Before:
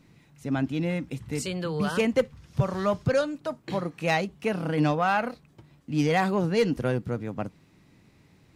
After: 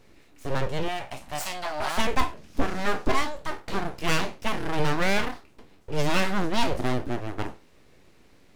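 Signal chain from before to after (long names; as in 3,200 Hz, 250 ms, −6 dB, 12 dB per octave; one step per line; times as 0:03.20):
peak hold with a decay on every bin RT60 0.31 s
full-wave rectification
0:00.88–0:01.98: low shelf with overshoot 560 Hz −7.5 dB, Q 3
level +2.5 dB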